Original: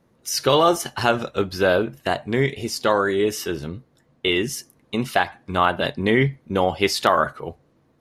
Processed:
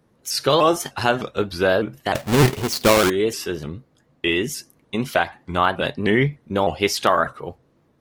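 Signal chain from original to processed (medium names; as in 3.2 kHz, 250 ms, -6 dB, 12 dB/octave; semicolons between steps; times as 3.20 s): 2.15–3.10 s: square wave that keeps the level; vibrato with a chosen wave saw up 3.3 Hz, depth 160 cents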